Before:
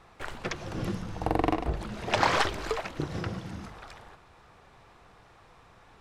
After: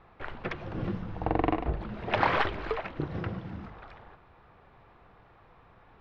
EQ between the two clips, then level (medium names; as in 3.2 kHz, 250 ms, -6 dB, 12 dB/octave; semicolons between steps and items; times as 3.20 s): dynamic bell 2.4 kHz, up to +3 dB, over -41 dBFS, Q 0.92; distance through air 350 m; 0.0 dB